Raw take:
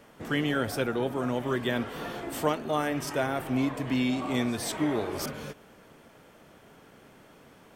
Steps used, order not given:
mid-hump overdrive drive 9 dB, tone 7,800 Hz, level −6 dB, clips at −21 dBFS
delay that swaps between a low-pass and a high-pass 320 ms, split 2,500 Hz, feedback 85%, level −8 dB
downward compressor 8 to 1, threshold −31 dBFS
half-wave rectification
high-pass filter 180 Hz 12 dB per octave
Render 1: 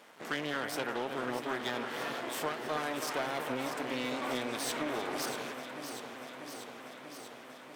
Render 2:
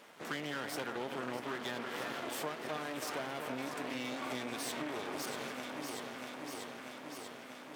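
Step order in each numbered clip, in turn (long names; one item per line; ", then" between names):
half-wave rectification, then high-pass filter, then downward compressor, then delay that swaps between a low-pass and a high-pass, then mid-hump overdrive
mid-hump overdrive, then delay that swaps between a low-pass and a high-pass, then downward compressor, then half-wave rectification, then high-pass filter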